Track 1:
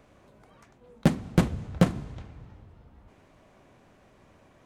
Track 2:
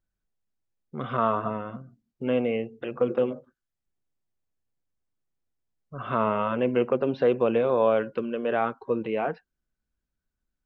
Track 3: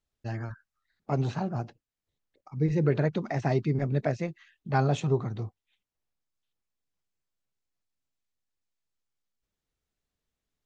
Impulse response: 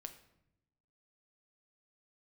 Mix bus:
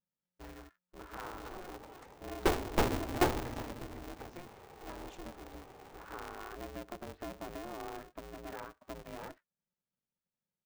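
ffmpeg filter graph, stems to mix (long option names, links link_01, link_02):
-filter_complex "[0:a]equalizer=frequency=630:width_type=o:width=0.83:gain=12.5,asoftclip=type=tanh:threshold=-19dB,adelay=1400,volume=-2dB[link_01];[1:a]highshelf=frequency=2400:width_type=q:width=1.5:gain=-7,volume=-17dB[link_02];[2:a]highpass=100,acompressor=threshold=-28dB:ratio=6,adelay=150,volume=-14dB[link_03];[link_02][link_03]amix=inputs=2:normalize=0,acompressor=threshold=-41dB:ratio=3,volume=0dB[link_04];[link_01][link_04]amix=inputs=2:normalize=0,aeval=exprs='val(0)*sgn(sin(2*PI*180*n/s))':channel_layout=same"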